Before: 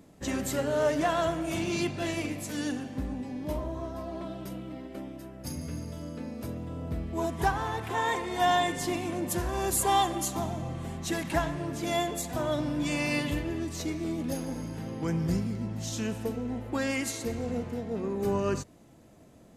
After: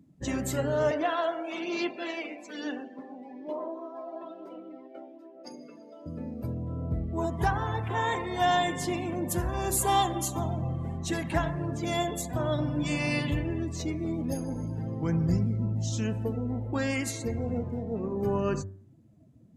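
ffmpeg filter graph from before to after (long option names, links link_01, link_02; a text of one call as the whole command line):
ffmpeg -i in.wav -filter_complex "[0:a]asettb=1/sr,asplit=3[link_01][link_02][link_03];[link_01]atrim=end=0.914[link_04];[link_02]atrim=start=0.91:end=6.06,asetpts=PTS-STARTPTS,afade=type=in:duration=0.004:curve=qsin,afade=type=out:start_time=5.146:duration=0.004:curve=qsin,highpass=frequency=230:width=0.5412,highpass=frequency=230:width=1.3066,acrossover=split=300 5700:gain=0.178 1 0.178[link_05][link_06][link_07];[link_05][link_06][link_07]amix=inputs=3:normalize=0,aphaser=in_gain=1:out_gain=1:delay=1.4:decay=0.26:speed=1.1:type=sinusoidal[link_08];[link_03]atrim=start=6.056[link_09];[link_04][link_08]acrossfade=duration=0.004:curve1=hsin:curve2=qsin[link_10];[link_10][link_09]acrossfade=duration=0.004:curve1=qsin:curve2=hsin,afftdn=noise_reduction=18:noise_floor=-45,equalizer=frequency=110:width=1.7:gain=8,bandreject=frequency=96.84:width_type=h:width=4,bandreject=frequency=193.68:width_type=h:width=4,bandreject=frequency=290.52:width_type=h:width=4,bandreject=frequency=387.36:width_type=h:width=4,bandreject=frequency=484.2:width_type=h:width=4,bandreject=frequency=581.04:width_type=h:width=4,bandreject=frequency=677.88:width_type=h:width=4,bandreject=frequency=774.72:width_type=h:width=4,bandreject=frequency=871.56:width_type=h:width=4,bandreject=frequency=968.4:width_type=h:width=4,bandreject=frequency=1065.24:width_type=h:width=4,bandreject=frequency=1162.08:width_type=h:width=4,bandreject=frequency=1258.92:width_type=h:width=4,bandreject=frequency=1355.76:width_type=h:width=4,bandreject=frequency=1452.6:width_type=h:width=4,bandreject=frequency=1549.44:width_type=h:width=4,bandreject=frequency=1646.28:width_type=h:width=4,bandreject=frequency=1743.12:width_type=h:width=4,bandreject=frequency=1839.96:width_type=h:width=4,bandreject=frequency=1936.8:width_type=h:width=4" out.wav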